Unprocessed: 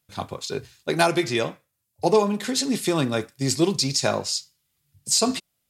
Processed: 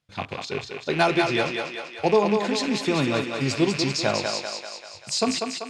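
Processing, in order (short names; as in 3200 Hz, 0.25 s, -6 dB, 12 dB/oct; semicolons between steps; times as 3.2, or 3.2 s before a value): rattling part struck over -37 dBFS, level -21 dBFS; LPF 4800 Hz 12 dB/oct; thinning echo 0.194 s, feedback 60%, high-pass 330 Hz, level -4 dB; gain -1 dB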